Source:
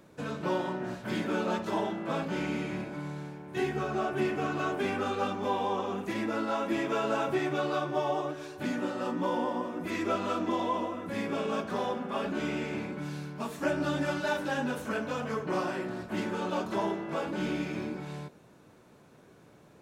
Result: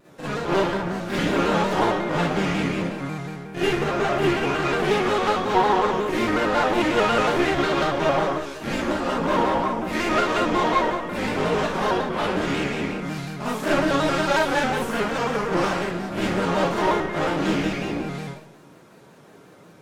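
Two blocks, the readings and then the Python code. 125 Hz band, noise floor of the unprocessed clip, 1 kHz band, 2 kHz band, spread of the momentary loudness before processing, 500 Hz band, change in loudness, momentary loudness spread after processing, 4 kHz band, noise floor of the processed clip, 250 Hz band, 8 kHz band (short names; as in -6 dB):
+9.5 dB, -57 dBFS, +10.5 dB, +11.0 dB, 7 LU, +9.0 dB, +9.5 dB, 8 LU, +12.0 dB, -49 dBFS, +8.0 dB, +11.5 dB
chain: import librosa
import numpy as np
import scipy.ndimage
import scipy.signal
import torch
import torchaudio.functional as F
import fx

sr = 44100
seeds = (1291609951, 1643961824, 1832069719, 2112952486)

y = fx.low_shelf(x, sr, hz=90.0, db=-10.5)
y = fx.cheby_harmonics(y, sr, harmonics=(6,), levels_db=(-15,), full_scale_db=-17.0)
y = fx.rev_schroeder(y, sr, rt60_s=0.6, comb_ms=38, drr_db=-8.5)
y = fx.vibrato_shape(y, sr, shape='square', rate_hz=5.5, depth_cents=100.0)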